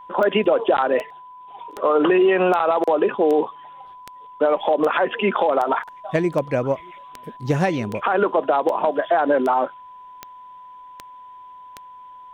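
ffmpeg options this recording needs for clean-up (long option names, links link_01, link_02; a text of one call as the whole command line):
ffmpeg -i in.wav -af "adeclick=threshold=4,bandreject=frequency=1000:width=30" out.wav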